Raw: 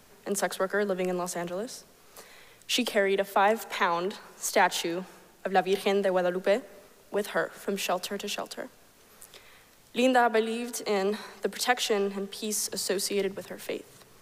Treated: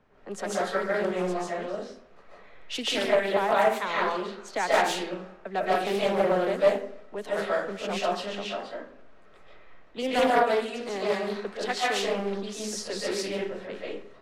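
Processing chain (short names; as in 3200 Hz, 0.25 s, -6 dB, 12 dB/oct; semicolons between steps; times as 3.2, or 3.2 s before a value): low-pass opened by the level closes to 1800 Hz, open at -21.5 dBFS; reverb RT60 0.50 s, pre-delay 0.105 s, DRR -7 dB; Doppler distortion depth 0.29 ms; gain -6.5 dB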